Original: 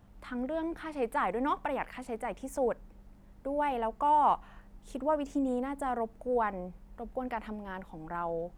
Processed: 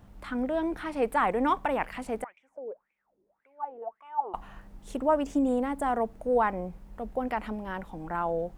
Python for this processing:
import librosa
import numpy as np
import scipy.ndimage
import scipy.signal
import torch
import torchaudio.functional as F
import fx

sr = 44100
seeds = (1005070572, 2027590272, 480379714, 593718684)

y = fx.wah_lfo(x, sr, hz=1.8, low_hz=370.0, high_hz=2400.0, q=12.0, at=(2.24, 4.34))
y = F.gain(torch.from_numpy(y), 5.0).numpy()